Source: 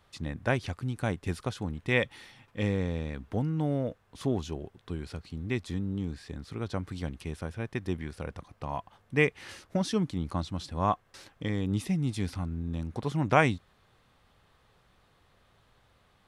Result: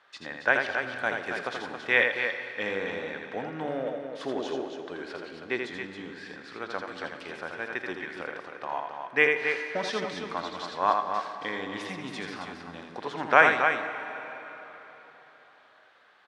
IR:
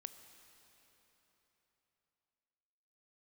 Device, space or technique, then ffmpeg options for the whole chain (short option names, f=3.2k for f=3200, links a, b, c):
station announcement: -filter_complex "[0:a]highpass=500,lowpass=4.6k,equalizer=f=1.6k:t=o:w=0.44:g=8.5,aecho=1:1:81.63|274.1:0.562|0.447[a];[1:a]atrim=start_sample=2205[b];[a][b]afir=irnorm=-1:irlink=0,asettb=1/sr,asplit=3[c][d][e];[c]atrim=end=4.364[f];[d]atrim=start=4.36:end=5.7,asetpts=PTS-STARTPTS,afade=t=in:d=0.004:c=qsin,afade=t=out:st=1.336:d=0.004:c=qsin,equalizer=f=450:t=o:w=1.2:g=5.5[g];[e]atrim=start=5.696[h];[f][g]acrossfade=d=0.004:c1=hsin:c2=qsin[i];[i][h]acrossfade=d=0.004:c1=qsin:c2=hsin,volume=8.5dB"